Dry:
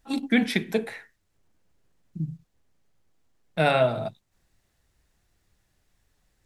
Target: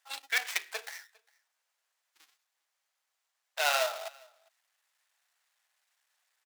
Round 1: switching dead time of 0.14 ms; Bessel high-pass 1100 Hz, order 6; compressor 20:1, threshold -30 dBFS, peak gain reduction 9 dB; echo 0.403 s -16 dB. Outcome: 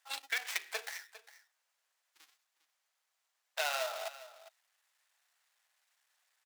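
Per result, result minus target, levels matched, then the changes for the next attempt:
compressor: peak gain reduction +9 dB; echo-to-direct +11 dB
remove: compressor 20:1, threshold -30 dBFS, peak gain reduction 9 dB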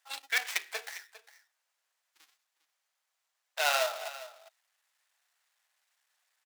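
echo-to-direct +11 dB
change: echo 0.403 s -27 dB

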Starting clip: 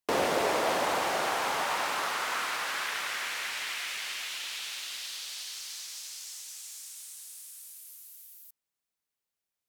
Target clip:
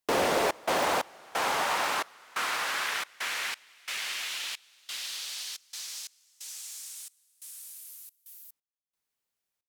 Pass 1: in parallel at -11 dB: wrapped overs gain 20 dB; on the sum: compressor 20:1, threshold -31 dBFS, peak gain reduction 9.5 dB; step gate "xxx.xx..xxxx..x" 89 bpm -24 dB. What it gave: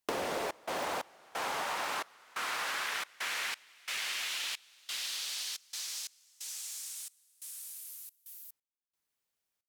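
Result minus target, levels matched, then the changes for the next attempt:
compressor: peak gain reduction +9.5 dB
remove: compressor 20:1, threshold -31 dBFS, peak gain reduction 9.5 dB

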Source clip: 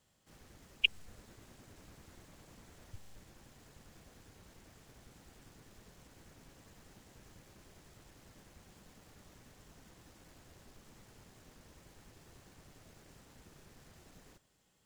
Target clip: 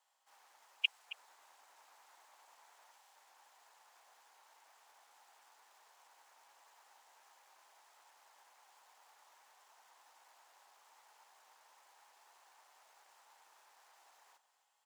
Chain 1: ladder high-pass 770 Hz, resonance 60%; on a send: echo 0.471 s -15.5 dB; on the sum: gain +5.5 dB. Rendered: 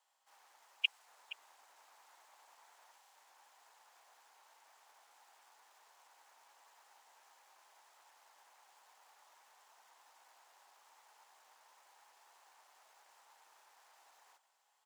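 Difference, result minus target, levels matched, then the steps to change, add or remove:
echo 0.2 s late
change: echo 0.271 s -15.5 dB

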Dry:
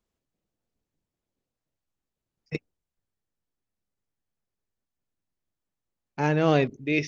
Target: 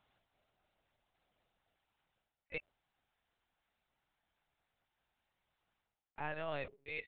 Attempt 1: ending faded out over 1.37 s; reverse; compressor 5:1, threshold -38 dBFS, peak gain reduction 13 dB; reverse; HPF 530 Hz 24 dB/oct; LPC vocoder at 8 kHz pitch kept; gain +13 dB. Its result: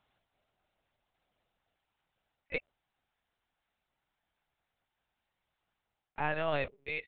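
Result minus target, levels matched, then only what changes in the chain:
compressor: peak gain reduction -8.5 dB
change: compressor 5:1, threshold -48.5 dBFS, peak gain reduction 21.5 dB

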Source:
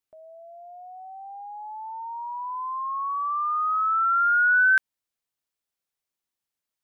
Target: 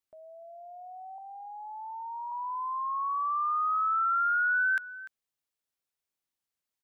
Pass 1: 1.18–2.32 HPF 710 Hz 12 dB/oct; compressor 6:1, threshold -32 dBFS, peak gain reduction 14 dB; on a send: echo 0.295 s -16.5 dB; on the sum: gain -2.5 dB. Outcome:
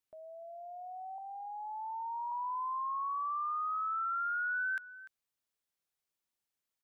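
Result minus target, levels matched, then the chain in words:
compressor: peak gain reduction +8 dB
1.18–2.32 HPF 710 Hz 12 dB/oct; compressor 6:1, threshold -22.5 dBFS, peak gain reduction 6 dB; on a send: echo 0.295 s -16.5 dB; on the sum: gain -2.5 dB

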